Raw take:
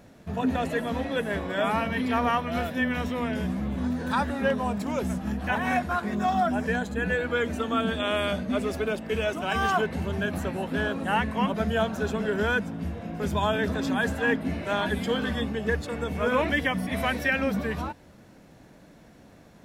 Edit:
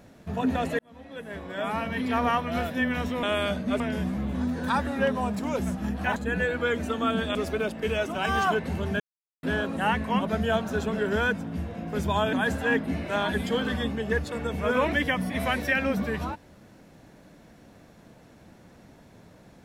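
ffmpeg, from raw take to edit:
ffmpeg -i in.wav -filter_complex "[0:a]asplit=9[link_01][link_02][link_03][link_04][link_05][link_06][link_07][link_08][link_09];[link_01]atrim=end=0.79,asetpts=PTS-STARTPTS,afade=type=out:start_time=0.786:duration=0.004:curve=hsin[link_10];[link_02]atrim=start=0.79:end=3.232,asetpts=PTS-STARTPTS,afade=type=in:duration=1.46[link_11];[link_03]atrim=start=8.048:end=8.622[link_12];[link_04]atrim=start=3.228:end=5.592[link_13];[link_05]atrim=start=6.858:end=8.052[link_14];[link_06]atrim=start=8.618:end=10.27,asetpts=PTS-STARTPTS,afade=type=out:start_time=1.648:duration=0.004:curve=hsin[link_15];[link_07]atrim=start=10.27:end=10.7,asetpts=PTS-STARTPTS,volume=0[link_16];[link_08]atrim=start=10.7:end=13.602,asetpts=PTS-STARTPTS,afade=type=in:duration=0.004:curve=hsin[link_17];[link_09]atrim=start=13.898[link_18];[link_10][link_11]concat=n=2:v=0:a=1[link_19];[link_19][link_12]acrossfade=duration=0.004:curve1=hsin:curve2=hsin[link_20];[link_20][link_13]acrossfade=duration=0.004:curve1=hsin:curve2=hsin[link_21];[link_21][link_14]acrossfade=duration=0.004:curve1=hsin:curve2=hsin[link_22];[link_15][link_16][link_17]concat=n=3:v=0:a=1[link_23];[link_22][link_23]acrossfade=duration=0.004:curve1=hsin:curve2=hsin[link_24];[link_24][link_18]acrossfade=duration=0.004:curve1=hsin:curve2=hsin" out.wav

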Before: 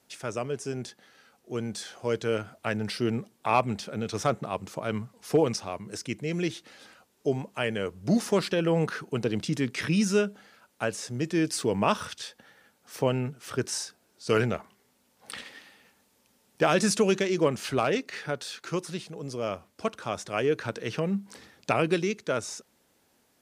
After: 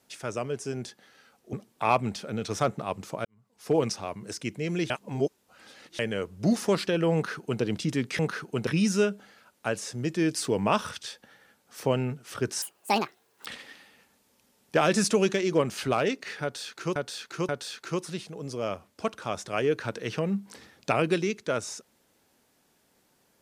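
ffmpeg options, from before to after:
ffmpeg -i in.wav -filter_complex "[0:a]asplit=11[link_01][link_02][link_03][link_04][link_05][link_06][link_07][link_08][link_09][link_10][link_11];[link_01]atrim=end=1.532[link_12];[link_02]atrim=start=3.168:end=4.89,asetpts=PTS-STARTPTS,afade=type=out:start_time=1.718:duration=0.004:curve=hsin[link_13];[link_03]atrim=start=4.89:end=6.542,asetpts=PTS-STARTPTS,afade=type=in:duration=0.55:curve=qua[link_14];[link_04]atrim=start=6.538:end=7.632,asetpts=PTS-STARTPTS,areverse[link_15];[link_05]atrim=start=7.628:end=9.832[link_16];[link_06]atrim=start=8.778:end=9.262[link_17];[link_07]atrim=start=9.828:end=13.784[link_18];[link_08]atrim=start=13.78:end=15.32,asetpts=PTS-STARTPTS,asetrate=81144,aresample=44100[link_19];[link_09]atrim=start=15.316:end=18.822[link_20];[link_10]atrim=start=18.288:end=18.822[link_21];[link_11]atrim=start=18.288[link_22];[link_13][link_14]concat=n=2:v=0:a=1[link_23];[link_12][link_23]acrossfade=duration=0.004:curve1=hsin:curve2=hsin[link_24];[link_24][link_15]acrossfade=duration=0.004:curve1=hsin:curve2=hsin[link_25];[link_25][link_16]acrossfade=duration=0.004:curve1=hsin:curve2=hsin[link_26];[link_26][link_17]acrossfade=duration=0.004:curve1=hsin:curve2=hsin[link_27];[link_27][link_18]acrossfade=duration=0.004:curve1=hsin:curve2=hsin[link_28];[link_28][link_19]acrossfade=duration=0.004:curve1=hsin:curve2=hsin[link_29];[link_29][link_20]acrossfade=duration=0.004:curve1=hsin:curve2=hsin[link_30];[link_30][link_21]acrossfade=duration=0.004:curve1=hsin:curve2=hsin[link_31];[link_31][link_22]acrossfade=duration=0.004:curve1=hsin:curve2=hsin" out.wav

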